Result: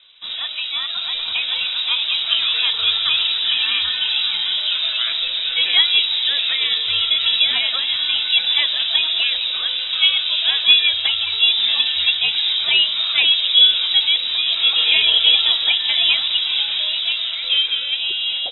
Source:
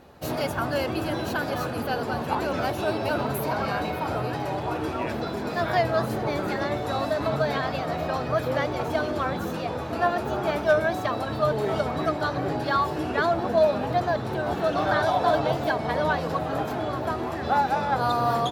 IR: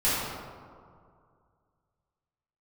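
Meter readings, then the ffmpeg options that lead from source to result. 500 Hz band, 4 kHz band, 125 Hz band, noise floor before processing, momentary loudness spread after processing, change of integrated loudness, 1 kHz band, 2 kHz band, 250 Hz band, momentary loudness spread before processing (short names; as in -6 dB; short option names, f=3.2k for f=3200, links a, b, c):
under -15 dB, +27.0 dB, under -20 dB, -31 dBFS, 8 LU, +10.5 dB, -13.0 dB, +8.0 dB, under -20 dB, 6 LU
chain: -af "dynaudnorm=f=150:g=17:m=7dB,lowpass=f=3.4k:t=q:w=0.5098,lowpass=f=3.4k:t=q:w=0.6013,lowpass=f=3.4k:t=q:w=0.9,lowpass=f=3.4k:t=q:w=2.563,afreqshift=-4000,volume=1dB"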